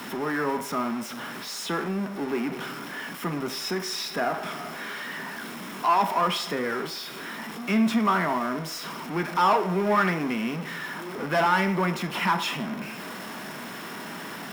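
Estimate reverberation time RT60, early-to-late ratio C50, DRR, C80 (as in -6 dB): 0.60 s, 11.5 dB, 7.0 dB, 15.0 dB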